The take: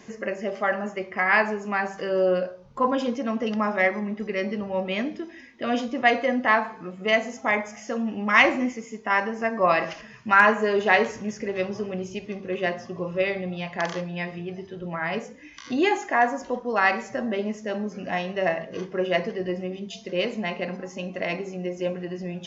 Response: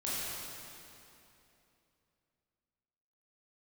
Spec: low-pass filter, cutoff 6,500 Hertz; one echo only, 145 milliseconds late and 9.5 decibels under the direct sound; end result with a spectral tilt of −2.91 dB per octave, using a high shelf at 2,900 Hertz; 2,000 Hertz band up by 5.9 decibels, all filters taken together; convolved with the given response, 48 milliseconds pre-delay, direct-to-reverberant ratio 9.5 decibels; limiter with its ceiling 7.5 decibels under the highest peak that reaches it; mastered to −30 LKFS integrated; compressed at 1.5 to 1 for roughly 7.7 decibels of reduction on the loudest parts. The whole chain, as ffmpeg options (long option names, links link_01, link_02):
-filter_complex "[0:a]lowpass=6500,equalizer=frequency=2000:width_type=o:gain=5.5,highshelf=frequency=2900:gain=4,acompressor=threshold=-29dB:ratio=1.5,alimiter=limit=-14.5dB:level=0:latency=1,aecho=1:1:145:0.335,asplit=2[link_01][link_02];[1:a]atrim=start_sample=2205,adelay=48[link_03];[link_02][link_03]afir=irnorm=-1:irlink=0,volume=-15dB[link_04];[link_01][link_04]amix=inputs=2:normalize=0,volume=-2.5dB"